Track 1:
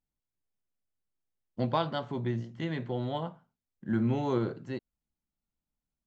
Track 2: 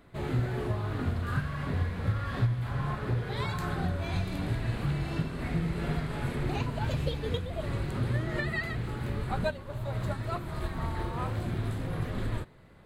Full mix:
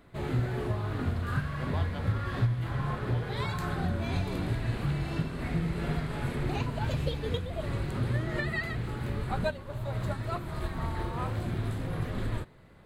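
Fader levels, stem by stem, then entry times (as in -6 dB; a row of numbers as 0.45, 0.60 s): -11.0, 0.0 dB; 0.00, 0.00 s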